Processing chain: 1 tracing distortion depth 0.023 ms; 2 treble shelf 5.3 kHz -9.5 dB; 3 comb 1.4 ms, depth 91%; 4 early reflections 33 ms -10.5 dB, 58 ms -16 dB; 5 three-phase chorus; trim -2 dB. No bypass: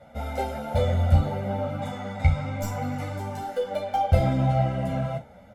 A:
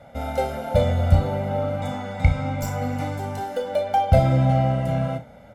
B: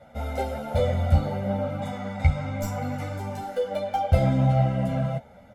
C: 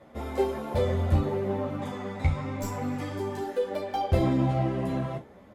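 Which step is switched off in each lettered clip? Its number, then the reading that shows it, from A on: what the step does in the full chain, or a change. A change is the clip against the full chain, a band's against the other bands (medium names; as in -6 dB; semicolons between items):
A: 5, 500 Hz band +1.5 dB; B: 4, 250 Hz band +2.0 dB; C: 3, 250 Hz band +4.0 dB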